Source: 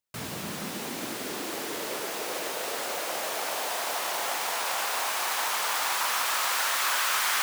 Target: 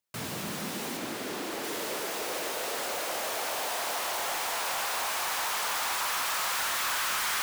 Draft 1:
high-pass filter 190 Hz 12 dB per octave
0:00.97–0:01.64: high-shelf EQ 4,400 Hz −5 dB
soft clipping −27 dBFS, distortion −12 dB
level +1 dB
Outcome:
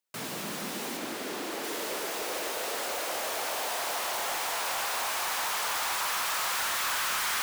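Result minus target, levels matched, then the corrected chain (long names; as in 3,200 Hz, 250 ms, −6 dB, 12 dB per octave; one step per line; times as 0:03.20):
125 Hz band −4.5 dB
high-pass filter 71 Hz 12 dB per octave
0:00.97–0:01.64: high-shelf EQ 4,400 Hz −5 dB
soft clipping −27 dBFS, distortion −12 dB
level +1 dB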